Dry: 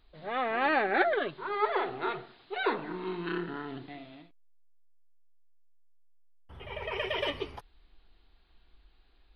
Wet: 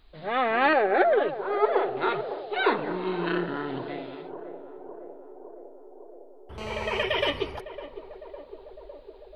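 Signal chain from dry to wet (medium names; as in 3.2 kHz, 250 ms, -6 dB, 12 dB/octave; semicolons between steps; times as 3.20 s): 0.73–1.97 s: graphic EQ 125/250/500/1000/2000/4000 Hz -4/-8/+7/-5/-5/-8 dB; band-passed feedback delay 556 ms, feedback 79%, band-pass 510 Hz, level -11.5 dB; 6.58–7.03 s: mobile phone buzz -44 dBFS; trim +6 dB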